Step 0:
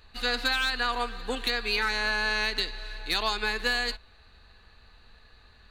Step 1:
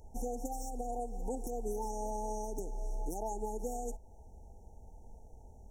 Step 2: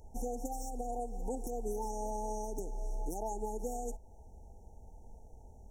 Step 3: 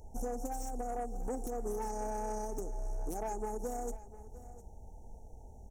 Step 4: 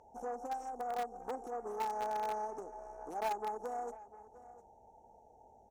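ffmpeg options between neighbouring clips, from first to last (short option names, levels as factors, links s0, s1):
-af "afftfilt=real='re*(1-between(b*sr/4096,930,5400))':imag='im*(1-between(b*sr/4096,930,5400))':win_size=4096:overlap=0.75,alimiter=level_in=2.51:limit=0.0631:level=0:latency=1:release=266,volume=0.398,volume=1.58"
-af anull
-af "asoftclip=type=tanh:threshold=0.0237,aecho=1:1:704:0.141,volume=1.33"
-filter_complex "[0:a]bandpass=f=1100:t=q:w=1.3:csg=0,asplit=2[s0][s1];[s1]acrusher=bits=5:mix=0:aa=0.000001,volume=0.282[s2];[s0][s2]amix=inputs=2:normalize=0,volume=1.88"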